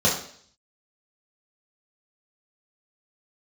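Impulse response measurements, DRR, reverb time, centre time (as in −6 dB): −5.5 dB, 0.55 s, 33 ms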